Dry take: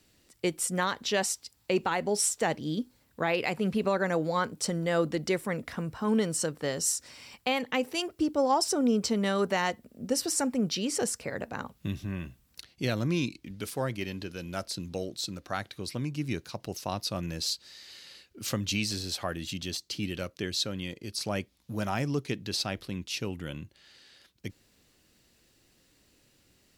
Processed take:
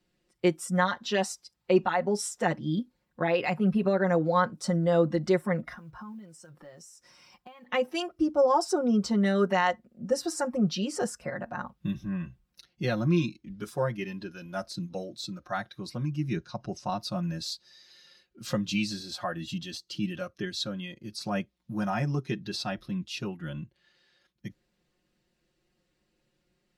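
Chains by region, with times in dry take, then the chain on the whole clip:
5.73–7.66 s: compression 8:1, threshold -42 dBFS + modulation noise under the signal 22 dB
16.36–16.90 s: low-pass 8.9 kHz 24 dB/octave + bass shelf 200 Hz +4 dB
whole clip: low-pass 2.3 kHz 6 dB/octave; spectral noise reduction 10 dB; comb 5.6 ms, depth 97%

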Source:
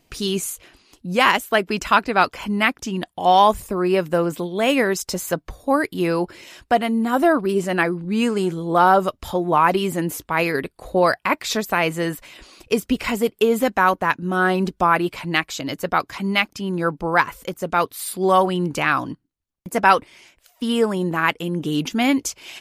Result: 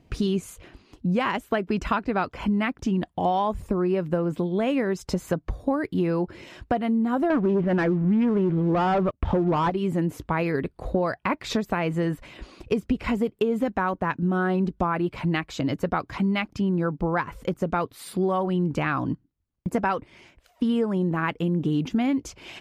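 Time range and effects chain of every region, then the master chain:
7.30–9.70 s: low-pass 2.7 kHz 24 dB/octave + waveshaping leveller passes 3 + loudspeaker Doppler distortion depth 0.11 ms
whole clip: high-pass 110 Hz 6 dB/octave; RIAA curve playback; compression 6:1, threshold -21 dBFS

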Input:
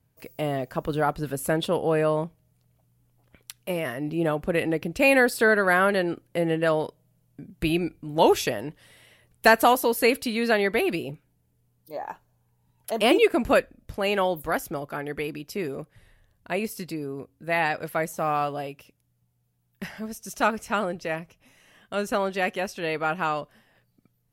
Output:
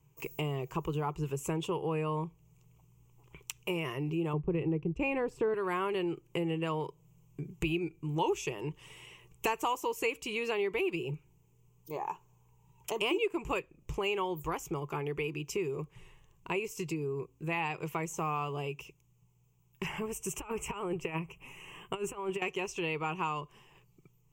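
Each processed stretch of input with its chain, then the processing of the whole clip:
4.33–5.54 s: expander -33 dBFS + low-pass 1.2 kHz 6 dB/octave + bass shelf 390 Hz +10.5 dB
19.86–22.42 s: high-order bell 4.9 kHz -11.5 dB 1.1 oct + compressor with a negative ratio -31 dBFS, ratio -0.5
whole clip: rippled EQ curve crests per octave 0.72, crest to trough 16 dB; compression 3:1, threshold -34 dBFS

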